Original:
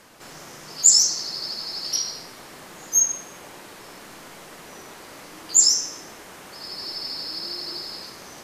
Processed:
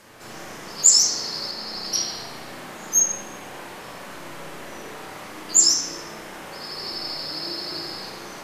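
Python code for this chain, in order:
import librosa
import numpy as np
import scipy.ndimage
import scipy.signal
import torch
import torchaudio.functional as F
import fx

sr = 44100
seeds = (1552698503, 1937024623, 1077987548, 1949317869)

y = fx.rev_spring(x, sr, rt60_s=1.3, pass_ms=(32, 41), chirp_ms=35, drr_db=-3.5)
y = fx.band_widen(y, sr, depth_pct=40, at=(1.51, 2.05))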